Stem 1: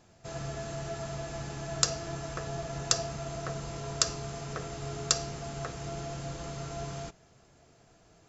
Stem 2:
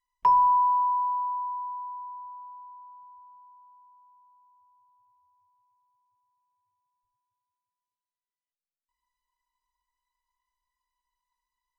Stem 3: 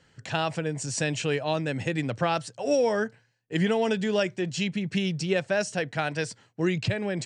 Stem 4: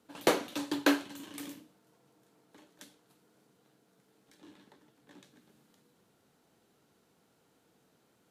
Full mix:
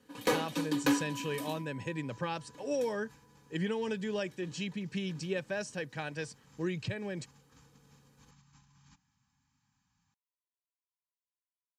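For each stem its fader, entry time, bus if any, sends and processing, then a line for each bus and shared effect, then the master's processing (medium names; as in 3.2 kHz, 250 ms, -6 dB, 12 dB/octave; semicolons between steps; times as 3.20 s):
-19.5 dB, 1.85 s, no send, FFT band-reject 280–770 Hz; compressor with a negative ratio -43 dBFS, ratio -0.5
-16.5 dB, 0.65 s, no send, cascade formant filter a
-8.5 dB, 0.00 s, no send, none
-1.0 dB, 0.00 s, no send, comb 4.1 ms, depth 89%; saturation -19.5 dBFS, distortion -11 dB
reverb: none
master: comb of notches 690 Hz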